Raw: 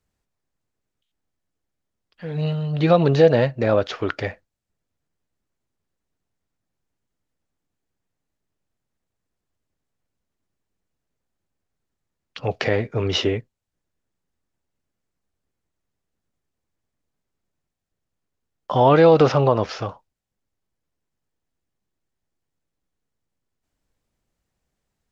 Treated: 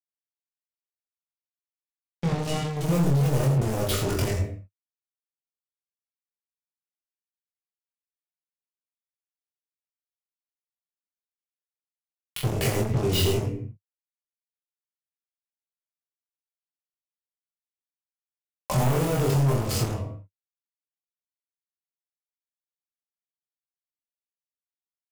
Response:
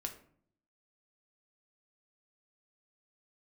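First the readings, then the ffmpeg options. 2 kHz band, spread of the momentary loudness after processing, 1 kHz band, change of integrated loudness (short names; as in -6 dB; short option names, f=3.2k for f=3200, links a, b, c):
-7.0 dB, 12 LU, -9.5 dB, -6.5 dB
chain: -filter_complex "[0:a]aresample=11025,asoftclip=type=tanh:threshold=-16.5dB,aresample=44100,acrusher=bits=4:mix=0:aa=0.5,equalizer=f=100:t=o:w=0.67:g=6,equalizer=f=1.6k:t=o:w=0.67:g=-8,equalizer=f=4k:t=o:w=0.67:g=-6,asplit=2[a][b];[b]alimiter=limit=-23.5dB:level=0:latency=1:release=25,volume=2.5dB[c];[a][c]amix=inputs=2:normalize=0[d];[1:a]atrim=start_sample=2205,afade=t=out:st=0.31:d=0.01,atrim=end_sample=14112[e];[d][e]afir=irnorm=-1:irlink=0,acompressor=threshold=-24dB:ratio=6,bass=f=250:g=9,treble=f=4k:g=10,aecho=1:1:45|79|85:0.422|0.119|0.398,asoftclip=type=hard:threshold=-21.5dB,asplit=2[f][g];[g]adelay=23,volume=-3.5dB[h];[f][h]amix=inputs=2:normalize=0"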